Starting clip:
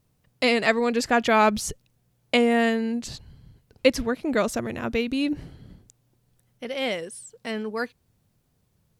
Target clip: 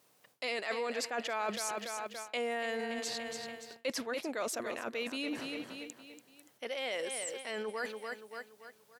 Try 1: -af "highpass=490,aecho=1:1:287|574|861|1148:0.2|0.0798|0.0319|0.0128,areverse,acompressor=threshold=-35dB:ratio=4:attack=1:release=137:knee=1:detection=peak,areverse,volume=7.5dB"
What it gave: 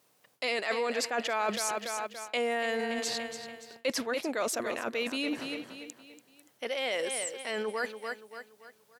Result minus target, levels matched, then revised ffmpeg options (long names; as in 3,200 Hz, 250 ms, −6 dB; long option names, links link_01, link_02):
downward compressor: peak gain reduction −5 dB
-af "highpass=490,aecho=1:1:287|574|861|1148:0.2|0.0798|0.0319|0.0128,areverse,acompressor=threshold=-41.5dB:ratio=4:attack=1:release=137:knee=1:detection=peak,areverse,volume=7.5dB"